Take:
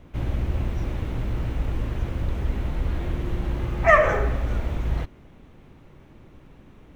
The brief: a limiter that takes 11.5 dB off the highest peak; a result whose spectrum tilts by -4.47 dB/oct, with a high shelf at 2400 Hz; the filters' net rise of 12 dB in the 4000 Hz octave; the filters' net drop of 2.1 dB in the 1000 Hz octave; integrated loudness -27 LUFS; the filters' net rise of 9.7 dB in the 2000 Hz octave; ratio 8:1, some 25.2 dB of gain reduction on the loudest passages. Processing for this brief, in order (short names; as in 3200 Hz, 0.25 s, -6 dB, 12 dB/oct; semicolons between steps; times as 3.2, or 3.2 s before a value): bell 1000 Hz -8.5 dB; bell 2000 Hz +8.5 dB; high shelf 2400 Hz +7 dB; bell 4000 Hz +7 dB; compressor 8:1, threshold -33 dBFS; gain +17 dB; limiter -16 dBFS